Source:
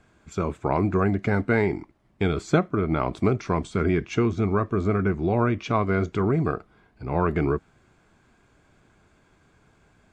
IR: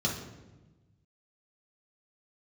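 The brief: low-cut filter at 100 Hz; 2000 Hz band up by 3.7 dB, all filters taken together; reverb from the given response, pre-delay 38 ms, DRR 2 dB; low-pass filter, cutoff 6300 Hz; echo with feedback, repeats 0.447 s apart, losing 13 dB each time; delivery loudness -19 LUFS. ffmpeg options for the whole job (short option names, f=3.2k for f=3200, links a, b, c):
-filter_complex "[0:a]highpass=100,lowpass=6.3k,equalizer=f=2k:t=o:g=5,aecho=1:1:447|894|1341:0.224|0.0493|0.0108,asplit=2[a][b];[1:a]atrim=start_sample=2205,adelay=38[c];[b][c]afir=irnorm=-1:irlink=0,volume=-9.5dB[d];[a][d]amix=inputs=2:normalize=0"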